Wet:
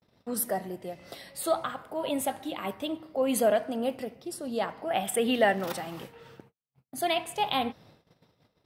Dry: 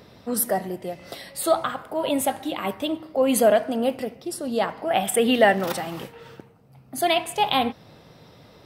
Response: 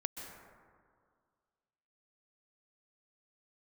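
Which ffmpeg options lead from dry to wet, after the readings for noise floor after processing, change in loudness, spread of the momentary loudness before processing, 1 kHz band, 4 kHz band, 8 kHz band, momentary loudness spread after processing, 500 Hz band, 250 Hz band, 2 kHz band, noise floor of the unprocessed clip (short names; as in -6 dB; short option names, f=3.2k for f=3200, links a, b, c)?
-75 dBFS, -6.5 dB, 15 LU, -6.5 dB, -6.5 dB, -6.5 dB, 15 LU, -6.5 dB, -6.5 dB, -6.5 dB, -51 dBFS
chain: -af "agate=range=-43dB:threshold=-47dB:ratio=16:detection=peak,volume=-6.5dB"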